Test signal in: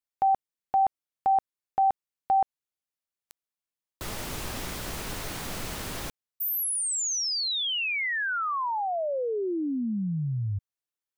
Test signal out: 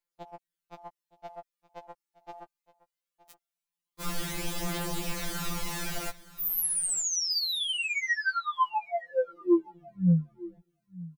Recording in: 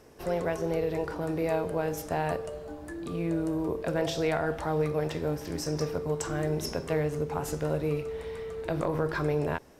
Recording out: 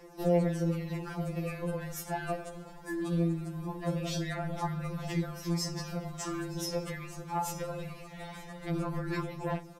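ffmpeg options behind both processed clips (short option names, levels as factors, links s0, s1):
-af "acompressor=threshold=0.0355:ratio=3:attack=0.47:release=31:knee=1:detection=rms,aphaser=in_gain=1:out_gain=1:delay=2.6:decay=0.4:speed=0.21:type=triangular,aecho=1:1:918:0.112,afftfilt=real='re*2.83*eq(mod(b,8),0)':imag='im*2.83*eq(mod(b,8),0)':win_size=2048:overlap=0.75,volume=1.33"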